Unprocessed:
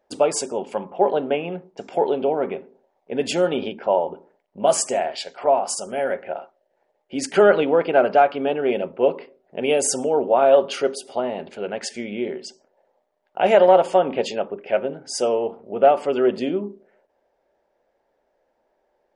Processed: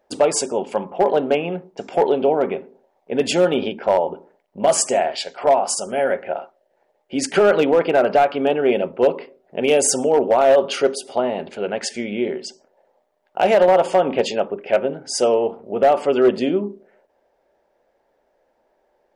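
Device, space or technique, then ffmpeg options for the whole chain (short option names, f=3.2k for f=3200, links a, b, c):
limiter into clipper: -af "alimiter=limit=-9dB:level=0:latency=1:release=100,asoftclip=type=hard:threshold=-12dB,volume=4dB"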